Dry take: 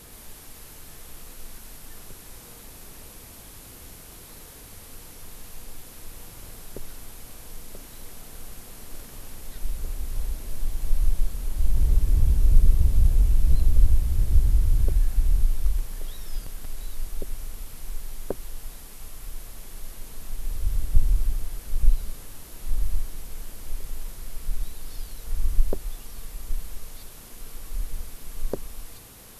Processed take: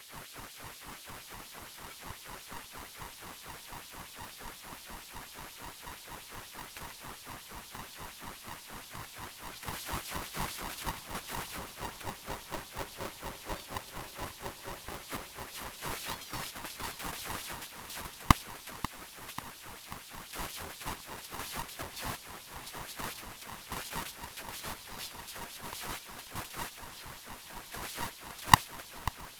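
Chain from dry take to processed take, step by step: HPF 62 Hz 12 dB/oct; tilt -3 dB/oct; gate -31 dBFS, range -8 dB; in parallel at -2 dB: negative-ratio compressor -26 dBFS, ratio -1; on the sum: LFO high-pass sine 4.2 Hz 470–4000 Hz; on a send: darkening echo 0.539 s, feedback 54%, level -14.5 dB; on the sum: polarity switched at an audio rate 470 Hz; gain +2.5 dB

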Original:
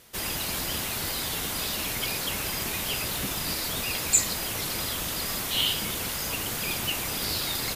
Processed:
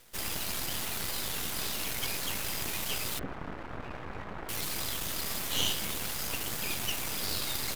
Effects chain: 3.19–4.49 LPF 1600 Hz 24 dB/oct; half-wave rectifier

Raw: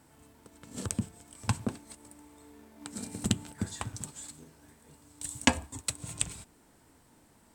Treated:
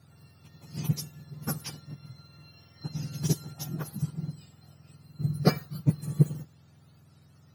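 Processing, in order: spectrum mirrored in octaves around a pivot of 1100 Hz

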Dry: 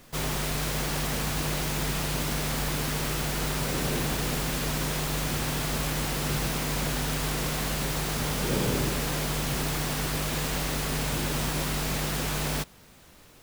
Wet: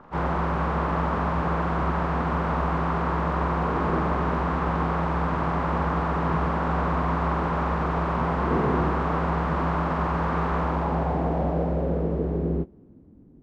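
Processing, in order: inharmonic rescaling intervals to 81%; low-pass sweep 1100 Hz -> 260 Hz, 10.55–13.19; gain +5.5 dB

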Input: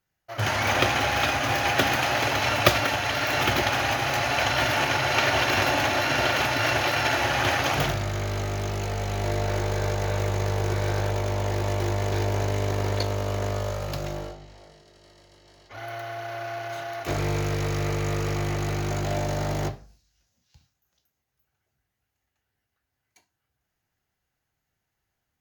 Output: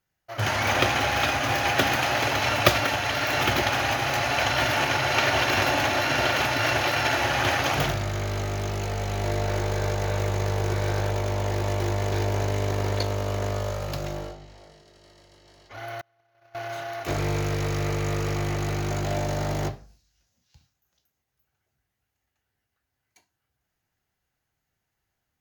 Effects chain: 16.01–16.55 gate -29 dBFS, range -34 dB

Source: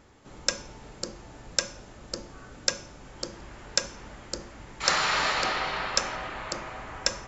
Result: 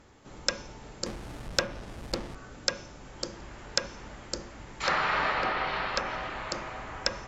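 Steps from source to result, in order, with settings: 1.06–2.35 half-waves squared off; treble ducked by the level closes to 2300 Hz, closed at -24 dBFS

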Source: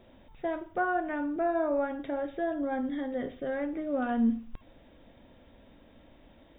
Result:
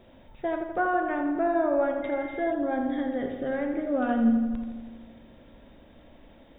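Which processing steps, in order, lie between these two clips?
darkening echo 83 ms, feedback 71%, low-pass 3200 Hz, level -7 dB; 2.02–2.5 whine 2100 Hz -44 dBFS; gain +2.5 dB

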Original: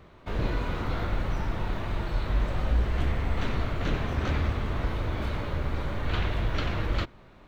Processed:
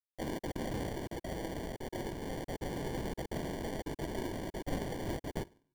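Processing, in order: in parallel at -2 dB: compressor 20:1, threshold -32 dBFS, peak gain reduction 14 dB; on the sum: bit-crush 6-bit; mistuned SSB -200 Hz 520–2100 Hz; notch 820 Hz, Q 15; on a send at -18 dB: reverb RT60 0.65 s, pre-delay 6 ms; on the sum: sample-and-hold 34×; step gate "xxxxxx.x.xx" 185 bpm -60 dB; tempo 1.3×; low shelf 430 Hz +6 dB; gain -4.5 dB

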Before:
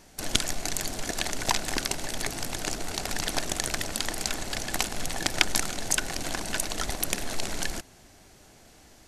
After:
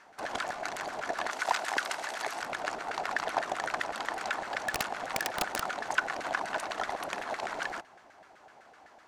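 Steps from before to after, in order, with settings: 1.3–2.42 tilt +2.5 dB/oct; soft clip -16 dBFS, distortion -12 dB; LFO band-pass saw down 7.9 Hz 680–1600 Hz; 4.61–5.75 wrapped overs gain 29 dB; gain +9 dB

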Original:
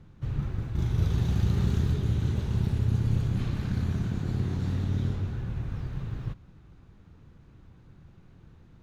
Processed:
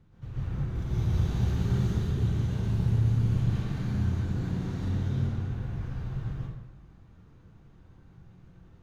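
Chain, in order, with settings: plate-style reverb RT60 0.99 s, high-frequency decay 0.65×, pre-delay 0.105 s, DRR -7 dB; gain -8.5 dB

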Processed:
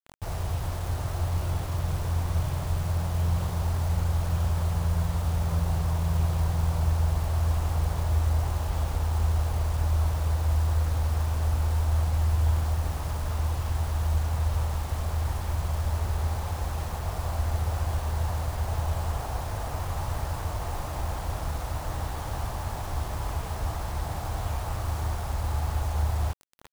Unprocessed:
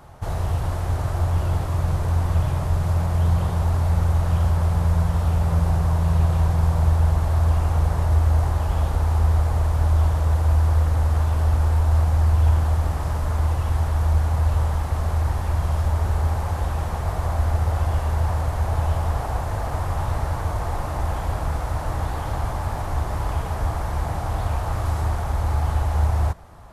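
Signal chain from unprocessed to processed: bit-crush 6-bit; gain -6.5 dB

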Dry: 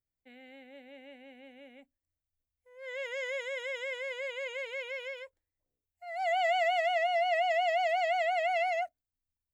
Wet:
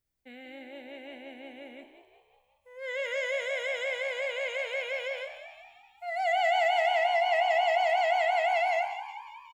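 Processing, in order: in parallel at +0.5 dB: compressor, threshold -39 dBFS, peak gain reduction 12.5 dB; on the sum: frequency-shifting echo 0.182 s, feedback 57%, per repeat +65 Hz, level -11 dB; non-linear reverb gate 0.24 s falling, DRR 9.5 dB

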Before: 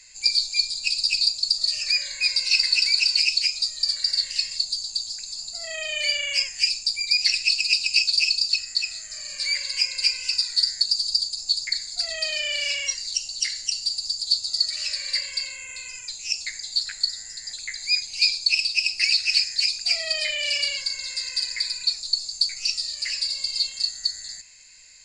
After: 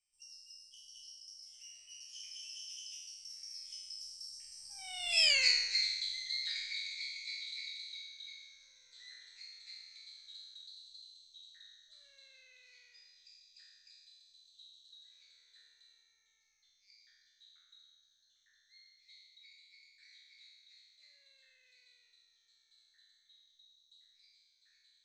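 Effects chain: spectral trails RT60 1.33 s; Doppler pass-by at 5.32, 52 m/s, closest 6.9 m; gain -5 dB

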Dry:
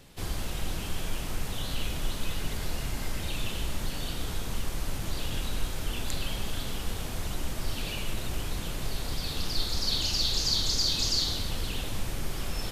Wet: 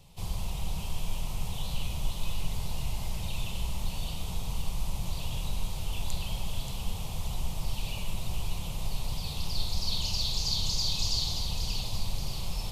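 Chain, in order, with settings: EQ curve 180 Hz 0 dB, 270 Hz -14 dB, 970 Hz 0 dB, 1600 Hz -19 dB, 2500 Hz -4 dB; split-band echo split 2000 Hz, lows 0.123 s, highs 0.58 s, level -8 dB

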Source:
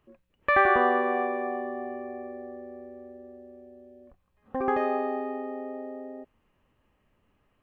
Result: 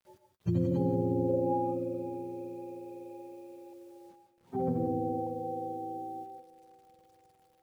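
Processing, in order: spectrum mirrored in octaves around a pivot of 450 Hz; 1.28–1.84 bell 450 Hz -> 1700 Hz +12.5 dB 0.43 oct; 3.73–5.27 LPF 1300 Hz 12 dB/oct; compressor 4:1, threshold -25 dBFS, peak gain reduction 8.5 dB; bit-crush 11-bit; thinning echo 0.533 s, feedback 55%, high-pass 260 Hz, level -18.5 dB; non-linear reverb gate 0.2 s rising, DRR 6.5 dB; gain -1.5 dB

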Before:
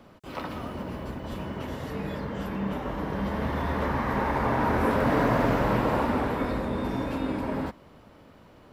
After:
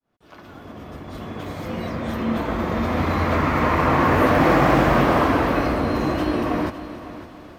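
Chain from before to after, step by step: opening faded in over 2.79 s; varispeed +15%; multi-head echo 0.278 s, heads first and second, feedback 41%, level -16 dB; gain +7 dB

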